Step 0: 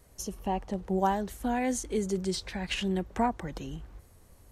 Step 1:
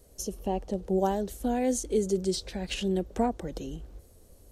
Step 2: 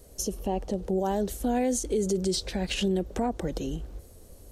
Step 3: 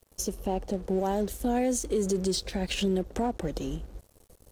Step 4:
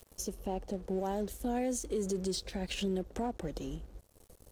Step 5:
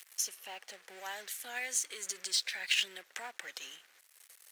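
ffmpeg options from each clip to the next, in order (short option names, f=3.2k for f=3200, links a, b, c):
-af "equalizer=f=125:t=o:w=1:g=-6,equalizer=f=500:t=o:w=1:g=5,equalizer=f=1k:t=o:w=1:g=-9,equalizer=f=2k:t=o:w=1:g=-8,volume=2.5dB"
-af "alimiter=limit=-24dB:level=0:latency=1:release=77,volume=5.5dB"
-af "aeval=exprs='sgn(val(0))*max(abs(val(0))-0.00376,0)':c=same"
-af "acompressor=mode=upward:threshold=-41dB:ratio=2.5,volume=-6.5dB"
-af "highpass=f=1.9k:t=q:w=2.2,acrusher=bits=6:mode=log:mix=0:aa=0.000001,volume=6.5dB"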